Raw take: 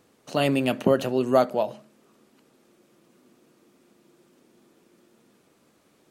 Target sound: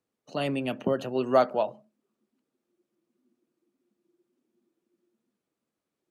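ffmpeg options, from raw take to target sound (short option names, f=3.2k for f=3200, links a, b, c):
-filter_complex "[0:a]asplit=3[a][b][c];[a]afade=t=out:st=1.14:d=0.02[d];[b]equalizer=f=1.6k:w=0.3:g=7,afade=t=in:st=1.14:d=0.02,afade=t=out:st=1.69:d=0.02[e];[c]afade=t=in:st=1.69:d=0.02[f];[d][e][f]amix=inputs=3:normalize=0,acrossover=split=150|830|3800[g][h][i][j];[j]volume=32dB,asoftclip=hard,volume=-32dB[k];[g][h][i][k]amix=inputs=4:normalize=0,afftdn=nr=17:nf=-44,volume=-6.5dB"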